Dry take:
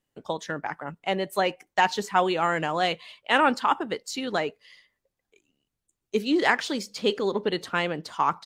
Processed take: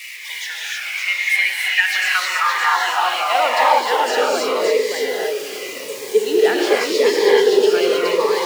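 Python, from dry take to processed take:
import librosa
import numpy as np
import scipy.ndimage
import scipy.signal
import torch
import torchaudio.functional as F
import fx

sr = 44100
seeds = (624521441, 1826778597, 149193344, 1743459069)

p1 = x + 0.5 * 10.0 ** (-28.5 / 20.0) * np.sign(x)
p2 = scipy.signal.sosfilt(scipy.signal.butter(2, 89.0, 'highpass', fs=sr, output='sos'), p1)
p3 = fx.peak_eq(p2, sr, hz=2300.0, db=5.5, octaves=0.87)
p4 = p3 + fx.echo_single(p3, sr, ms=566, db=-3.5, dry=0)
p5 = fx.filter_sweep_highpass(p4, sr, from_hz=2200.0, to_hz=440.0, start_s=1.57, end_s=4.17, q=5.3)
p6 = fx.peak_eq(p5, sr, hz=5000.0, db=4.5, octaves=0.65)
p7 = fx.rev_gated(p6, sr, seeds[0], gate_ms=340, shape='rising', drr_db=-4.5)
p8 = fx.notch_cascade(p7, sr, direction='falling', hz=0.86)
y = p8 * librosa.db_to_amplitude(-4.0)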